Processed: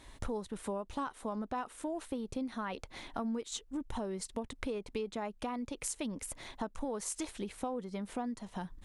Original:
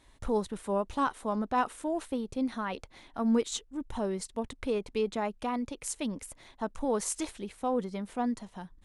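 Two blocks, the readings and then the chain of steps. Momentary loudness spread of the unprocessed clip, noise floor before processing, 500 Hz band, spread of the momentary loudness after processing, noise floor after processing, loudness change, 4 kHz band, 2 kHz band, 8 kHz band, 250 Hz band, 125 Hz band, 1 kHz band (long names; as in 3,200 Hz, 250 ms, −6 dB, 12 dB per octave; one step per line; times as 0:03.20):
9 LU, −61 dBFS, −7.5 dB, 4 LU, −60 dBFS, −6.5 dB, −4.0 dB, −5.5 dB, −3.0 dB, −6.0 dB, −4.0 dB, −7.5 dB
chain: downward compressor 6 to 1, threshold −42 dBFS, peak gain reduction 18.5 dB
level +6.5 dB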